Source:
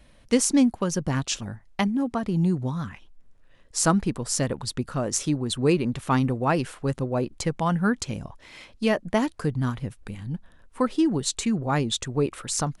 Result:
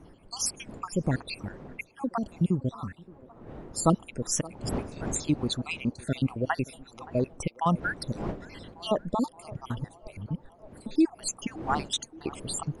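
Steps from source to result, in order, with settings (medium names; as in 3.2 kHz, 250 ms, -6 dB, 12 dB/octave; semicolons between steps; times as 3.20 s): random holes in the spectrogram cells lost 67%; wind noise 380 Hz -43 dBFS; 2.80–3.89 s: peaking EQ 4.8 kHz -6 dB 1.3 oct; band-passed feedback delay 572 ms, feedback 72%, band-pass 600 Hz, level -18.5 dB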